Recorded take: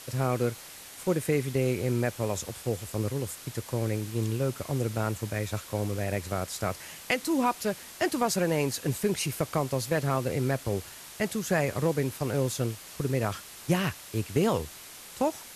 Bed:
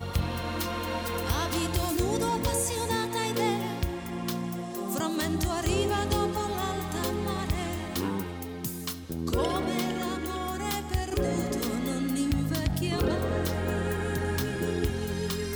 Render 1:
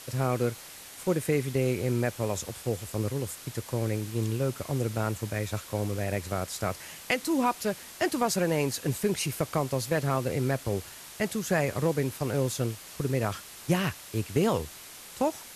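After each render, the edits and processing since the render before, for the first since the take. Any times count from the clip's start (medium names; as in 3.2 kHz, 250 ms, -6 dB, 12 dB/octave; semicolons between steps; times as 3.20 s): no audible change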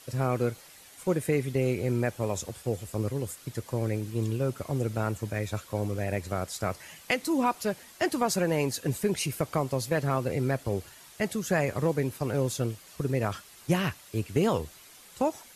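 noise reduction 8 dB, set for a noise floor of -46 dBFS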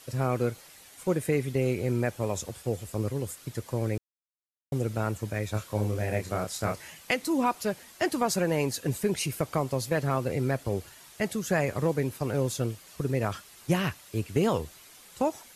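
3.98–4.72 s: mute; 5.51–6.90 s: doubling 28 ms -4.5 dB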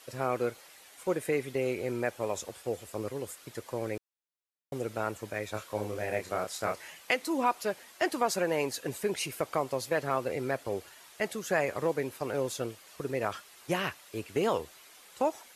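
tone controls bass -14 dB, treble -4 dB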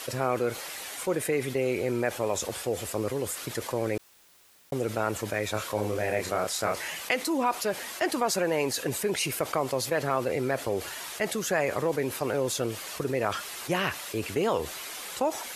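level flattener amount 50%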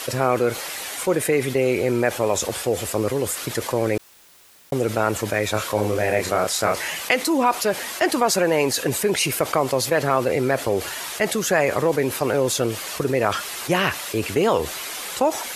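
trim +7.5 dB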